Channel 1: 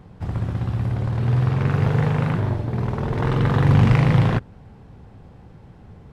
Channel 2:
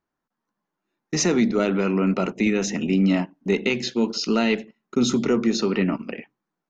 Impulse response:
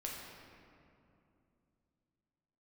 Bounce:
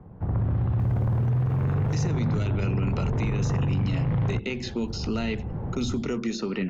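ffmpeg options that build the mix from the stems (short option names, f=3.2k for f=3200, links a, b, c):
-filter_complex "[0:a]lowpass=1.1k,dynaudnorm=f=280:g=3:m=16dB,volume=-2dB[a];[1:a]acompressor=mode=upward:threshold=-38dB:ratio=2.5,adelay=800,volume=2dB[b];[a][b]amix=inputs=2:normalize=0,acrossover=split=130|2400[c][d][e];[c]acompressor=threshold=-21dB:ratio=4[f];[d]acompressor=threshold=-29dB:ratio=4[g];[e]acompressor=threshold=-39dB:ratio=4[h];[f][g][h]amix=inputs=3:normalize=0,alimiter=limit=-18.5dB:level=0:latency=1:release=13"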